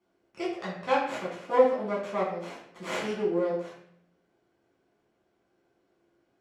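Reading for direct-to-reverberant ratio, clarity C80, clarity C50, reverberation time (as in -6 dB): -7.0 dB, 7.0 dB, 3.5 dB, 0.70 s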